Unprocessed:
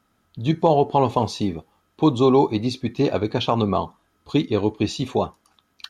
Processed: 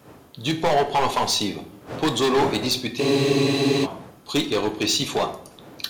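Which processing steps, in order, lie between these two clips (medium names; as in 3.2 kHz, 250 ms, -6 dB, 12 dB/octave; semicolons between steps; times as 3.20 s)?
wind noise 320 Hz -37 dBFS; high-pass 58 Hz; tilt EQ +3.5 dB/octave; overload inside the chain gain 20.5 dB; simulated room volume 130 m³, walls mixed, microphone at 0.37 m; spectral freeze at 3.03 s, 0.81 s; trim +3.5 dB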